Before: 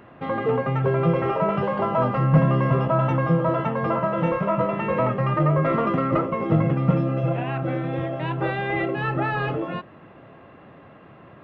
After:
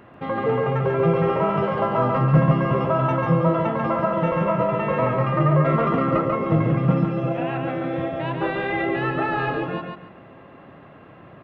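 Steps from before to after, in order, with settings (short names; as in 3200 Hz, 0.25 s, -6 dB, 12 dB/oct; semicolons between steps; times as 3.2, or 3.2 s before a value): feedback echo 0.141 s, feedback 25%, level -4 dB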